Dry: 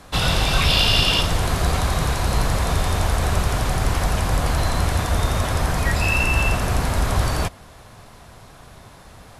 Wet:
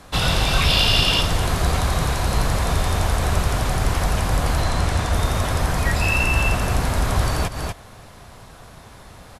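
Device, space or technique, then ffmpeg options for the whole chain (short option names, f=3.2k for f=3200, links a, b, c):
ducked delay: -filter_complex "[0:a]asettb=1/sr,asplit=3[a][b][c];[a]atrim=end=4.624[d];[b]atrim=start=4.62:end=5.13,asetpts=PTS-STARTPTS,afade=t=in:d=0.004:c=qsin,afade=t=out:st=0.506:d=0.004:c=qsin,lowpass=10k[e];[c]atrim=start=5.126[f];[d][e]acrossfade=d=0.004:c1=hsin:c2=qsin[g];[g][f]acrossfade=d=0.004:c1=qsin:c2=hsin,asplit=3[h][i][j];[i]adelay=242,volume=-4.5dB[k];[j]apad=whole_len=424876[l];[k][l]sidechaincompress=threshold=-37dB:ratio=4:attack=47:release=101[m];[h][m]amix=inputs=2:normalize=0"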